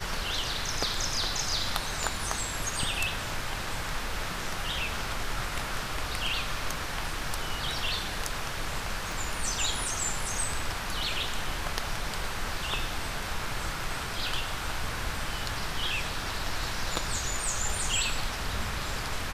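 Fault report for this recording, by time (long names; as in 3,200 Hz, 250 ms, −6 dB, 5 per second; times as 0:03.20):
0:09.12: click
0:16.96: drop-out 2.7 ms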